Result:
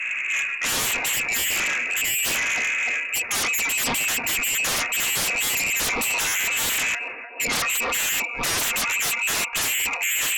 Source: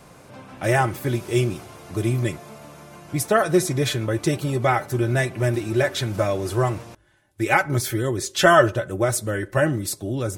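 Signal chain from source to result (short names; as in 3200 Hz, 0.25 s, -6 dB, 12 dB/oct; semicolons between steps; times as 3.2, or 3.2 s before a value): spectral gate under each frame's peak -30 dB strong; low-pass opened by the level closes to 720 Hz, open at -16.5 dBFS; reverse; compressor 8:1, threshold -32 dBFS, peak gain reduction 22 dB; reverse; inverted band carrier 2700 Hz; on a send: narrowing echo 0.3 s, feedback 78%, band-pass 510 Hz, level -11.5 dB; on the sum: sine folder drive 19 dB, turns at -20.5 dBFS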